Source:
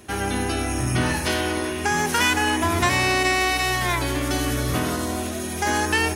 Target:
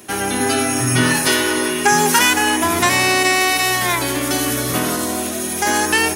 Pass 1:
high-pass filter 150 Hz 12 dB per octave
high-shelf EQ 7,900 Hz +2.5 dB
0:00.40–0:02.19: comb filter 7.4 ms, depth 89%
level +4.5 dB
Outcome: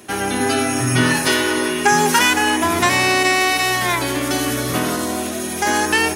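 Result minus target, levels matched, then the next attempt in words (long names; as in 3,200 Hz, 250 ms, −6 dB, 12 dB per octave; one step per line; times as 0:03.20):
8,000 Hz band −2.5 dB
high-pass filter 150 Hz 12 dB per octave
high-shelf EQ 7,900 Hz +9.5 dB
0:00.40–0:02.19: comb filter 7.4 ms, depth 89%
level +4.5 dB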